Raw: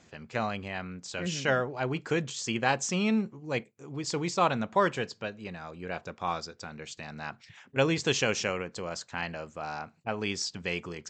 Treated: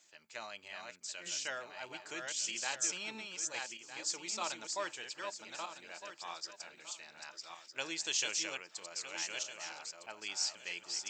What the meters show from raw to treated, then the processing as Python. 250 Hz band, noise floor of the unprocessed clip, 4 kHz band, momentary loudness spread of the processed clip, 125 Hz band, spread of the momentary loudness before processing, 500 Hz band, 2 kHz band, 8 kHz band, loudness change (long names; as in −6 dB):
−21.5 dB, −61 dBFS, −2.5 dB, 12 LU, −30.0 dB, 14 LU, −16.5 dB, −8.5 dB, +1.5 dB, −8.0 dB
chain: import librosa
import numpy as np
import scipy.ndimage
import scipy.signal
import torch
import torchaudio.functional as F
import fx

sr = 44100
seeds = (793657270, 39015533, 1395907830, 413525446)

y = fx.reverse_delay_fb(x, sr, ms=629, feedback_pct=42, wet_db=-4)
y = np.diff(y, prepend=0.0)
y = fx.small_body(y, sr, hz=(330.0, 610.0, 880.0), ring_ms=85, db=10)
y = y * librosa.db_to_amplitude(1.0)